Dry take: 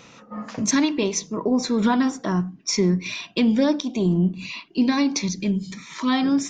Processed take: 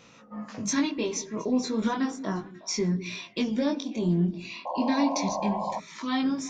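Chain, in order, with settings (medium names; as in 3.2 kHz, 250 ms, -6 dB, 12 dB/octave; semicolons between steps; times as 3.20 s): chorus 0.34 Hz, delay 18 ms, depth 5.7 ms; repeats whose band climbs or falls 180 ms, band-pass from 280 Hz, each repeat 1.4 oct, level -11.5 dB; painted sound noise, 4.65–5.80 s, 500–1100 Hz -28 dBFS; trim -3.5 dB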